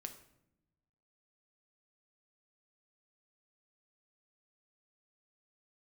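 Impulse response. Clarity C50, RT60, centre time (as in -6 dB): 11.0 dB, no single decay rate, 13 ms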